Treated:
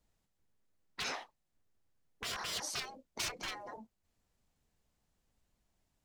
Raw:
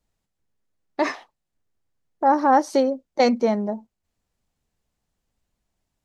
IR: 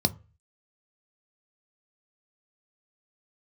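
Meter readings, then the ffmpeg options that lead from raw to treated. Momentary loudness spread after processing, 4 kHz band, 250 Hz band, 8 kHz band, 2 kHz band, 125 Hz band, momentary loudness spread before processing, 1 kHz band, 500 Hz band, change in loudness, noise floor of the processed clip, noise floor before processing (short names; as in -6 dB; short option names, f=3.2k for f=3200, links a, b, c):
14 LU, -2.0 dB, -31.5 dB, +0.5 dB, -10.0 dB, n/a, 15 LU, -25.0 dB, -28.5 dB, -18.5 dB, -82 dBFS, -81 dBFS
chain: -af "aeval=exprs='0.168*(abs(mod(val(0)/0.168+3,4)-2)-1)':c=same,afftfilt=real='re*lt(hypot(re,im),0.0708)':imag='im*lt(hypot(re,im),0.0708)':win_size=1024:overlap=0.75,volume=-1.5dB"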